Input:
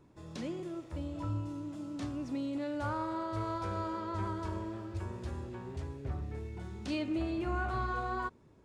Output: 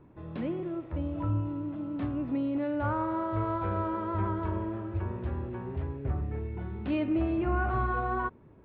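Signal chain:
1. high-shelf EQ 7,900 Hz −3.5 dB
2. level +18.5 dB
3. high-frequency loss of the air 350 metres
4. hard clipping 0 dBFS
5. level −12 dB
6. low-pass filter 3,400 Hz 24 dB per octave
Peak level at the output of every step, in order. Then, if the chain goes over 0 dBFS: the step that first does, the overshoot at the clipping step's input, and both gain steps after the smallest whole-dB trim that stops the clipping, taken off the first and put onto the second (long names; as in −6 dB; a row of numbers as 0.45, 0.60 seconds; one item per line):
−23.0, −4.5, −5.0, −5.0, −17.0, −17.0 dBFS
no step passes full scale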